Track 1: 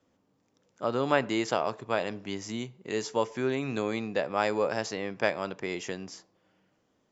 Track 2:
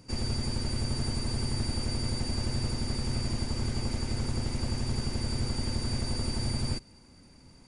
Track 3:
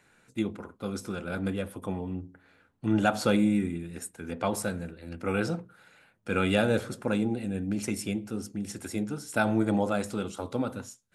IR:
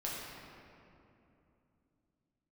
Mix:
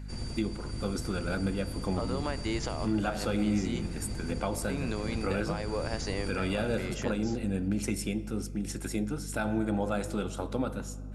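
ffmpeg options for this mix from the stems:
-filter_complex "[0:a]acompressor=threshold=-29dB:ratio=6,adelay=1150,volume=2dB,asplit=3[a][b][c];[a]atrim=end=3.89,asetpts=PTS-STARTPTS,afade=t=out:st=3.886:d=0.004:c=hsin[d];[b]atrim=start=3.89:end=4.69,asetpts=PTS-STARTPTS,volume=0[e];[c]atrim=start=4.69,asetpts=PTS-STARTPTS,afade=t=in:d=0.004:c=hsin[f];[d][e][f]concat=n=3:v=0:a=1[g];[1:a]volume=-9dB,asplit=2[h][i];[i]volume=-9.5dB[j];[2:a]volume=0.5dB,asplit=3[k][l][m];[l]volume=-19.5dB[n];[m]apad=whole_len=338667[o];[h][o]sidechaincompress=threshold=-30dB:ratio=8:attack=16:release=641[p];[g][k]amix=inputs=2:normalize=0,alimiter=limit=-21dB:level=0:latency=1:release=412,volume=0dB[q];[3:a]atrim=start_sample=2205[r];[j][n]amix=inputs=2:normalize=0[s];[s][r]afir=irnorm=-1:irlink=0[t];[p][q][t]amix=inputs=3:normalize=0,aeval=exprs='val(0)+0.0112*(sin(2*PI*50*n/s)+sin(2*PI*2*50*n/s)/2+sin(2*PI*3*50*n/s)/3+sin(2*PI*4*50*n/s)/4+sin(2*PI*5*50*n/s)/5)':c=same"

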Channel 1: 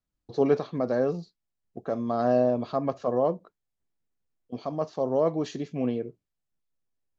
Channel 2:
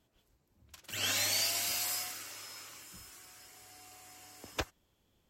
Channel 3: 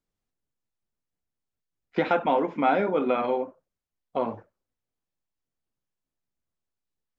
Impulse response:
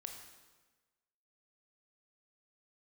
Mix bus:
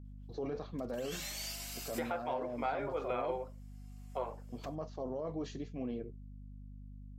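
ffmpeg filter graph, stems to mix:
-filter_complex "[0:a]flanger=delay=2.6:depth=7.2:regen=-57:speed=1.2:shape=triangular,volume=-5.5dB[a];[1:a]adelay=50,volume=-11dB[b];[2:a]highpass=f=380:w=0.5412,highpass=f=380:w=1.3066,volume=-10dB,asplit=2[c][d];[d]apad=whole_len=235531[e];[b][e]sidechaincompress=threshold=-44dB:ratio=6:attack=42:release=1220[f];[a][f]amix=inputs=2:normalize=0,aeval=exprs='val(0)+0.00398*(sin(2*PI*50*n/s)+sin(2*PI*2*50*n/s)/2+sin(2*PI*3*50*n/s)/3+sin(2*PI*4*50*n/s)/4+sin(2*PI*5*50*n/s)/5)':c=same,alimiter=level_in=7dB:limit=-24dB:level=0:latency=1:release=11,volume=-7dB,volume=0dB[g];[c][g]amix=inputs=2:normalize=0,alimiter=level_in=1dB:limit=-24dB:level=0:latency=1:release=431,volume=-1dB"

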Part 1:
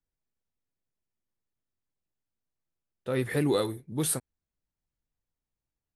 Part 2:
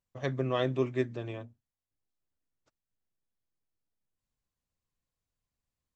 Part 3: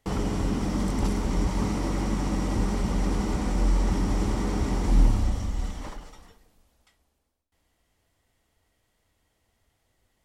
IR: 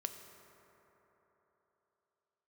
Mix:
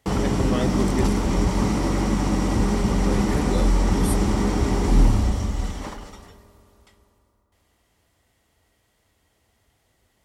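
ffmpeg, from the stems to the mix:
-filter_complex "[0:a]volume=-4dB[a];[1:a]volume=1dB[b];[2:a]highpass=43,volume=2.5dB,asplit=2[c][d];[d]volume=-4.5dB[e];[3:a]atrim=start_sample=2205[f];[e][f]afir=irnorm=-1:irlink=0[g];[a][b][c][g]amix=inputs=4:normalize=0"

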